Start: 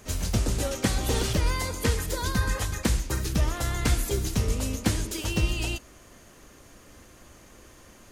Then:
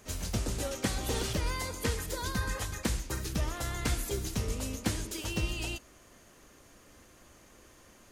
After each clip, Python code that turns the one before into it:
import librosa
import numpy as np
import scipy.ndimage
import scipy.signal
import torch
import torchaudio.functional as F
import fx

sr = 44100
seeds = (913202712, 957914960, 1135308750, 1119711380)

y = fx.low_shelf(x, sr, hz=180.0, db=-3.5)
y = y * librosa.db_to_amplitude(-5.0)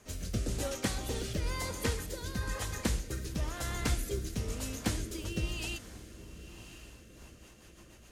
y = fx.echo_diffused(x, sr, ms=1064, feedback_pct=46, wet_db=-14.5)
y = fx.rotary_switch(y, sr, hz=1.0, then_hz=7.5, switch_at_s=6.85)